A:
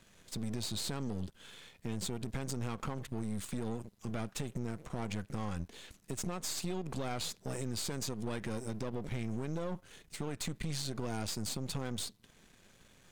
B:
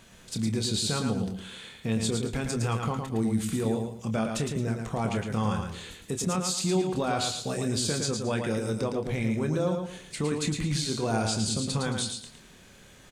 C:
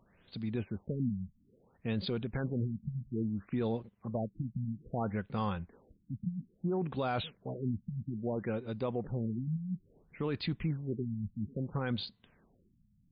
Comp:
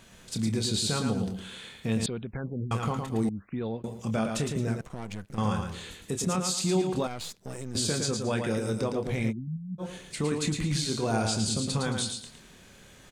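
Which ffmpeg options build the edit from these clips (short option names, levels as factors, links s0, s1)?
-filter_complex "[2:a]asplit=3[s0][s1][s2];[0:a]asplit=2[s3][s4];[1:a]asplit=6[s5][s6][s7][s8][s9][s10];[s5]atrim=end=2.062[s11];[s0]atrim=start=2.058:end=2.712[s12];[s6]atrim=start=2.708:end=3.292[s13];[s1]atrim=start=3.288:end=3.842[s14];[s7]atrim=start=3.838:end=4.812[s15];[s3]atrim=start=4.808:end=5.382[s16];[s8]atrim=start=5.378:end=7.072[s17];[s4]atrim=start=7.068:end=7.752[s18];[s9]atrim=start=7.748:end=9.33[s19];[s2]atrim=start=9.29:end=9.82[s20];[s10]atrim=start=9.78[s21];[s11][s12]acrossfade=d=0.004:c1=hsin:c2=hsin[s22];[s22][s13]acrossfade=d=0.004:c1=hsin:c2=hsin[s23];[s23][s14]acrossfade=d=0.004:c1=hsin:c2=hsin[s24];[s24][s15]acrossfade=d=0.004:c1=hsin:c2=hsin[s25];[s25][s16]acrossfade=d=0.004:c1=hsin:c2=hsin[s26];[s26][s17]acrossfade=d=0.004:c1=hsin:c2=hsin[s27];[s27][s18]acrossfade=d=0.004:c1=hsin:c2=hsin[s28];[s28][s19]acrossfade=d=0.004:c1=hsin:c2=hsin[s29];[s29][s20]acrossfade=d=0.04:c1=tri:c2=tri[s30];[s30][s21]acrossfade=d=0.04:c1=tri:c2=tri"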